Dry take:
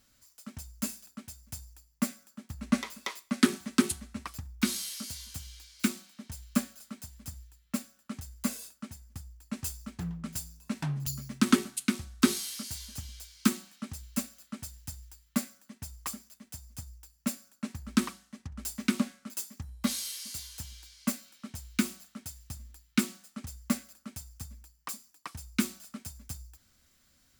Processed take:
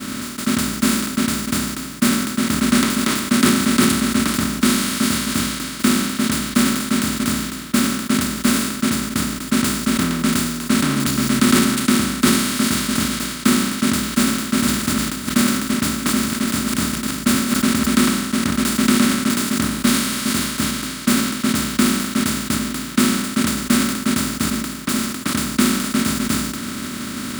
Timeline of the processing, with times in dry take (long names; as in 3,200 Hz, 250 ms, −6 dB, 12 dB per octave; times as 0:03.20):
0:14.09–0:18.01: delay that plays each chunk backwards 331 ms, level −12 dB
whole clip: compressor on every frequency bin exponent 0.2; downward expander −22 dBFS; level that may fall only so fast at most 45 dB per second; level +3 dB